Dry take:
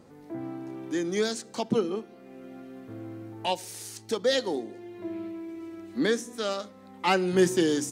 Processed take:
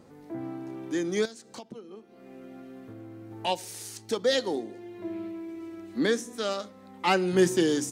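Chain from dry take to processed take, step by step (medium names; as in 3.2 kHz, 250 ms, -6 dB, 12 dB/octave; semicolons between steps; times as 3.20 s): 1.25–3.31 s: compression 12:1, threshold -40 dBFS, peak gain reduction 20 dB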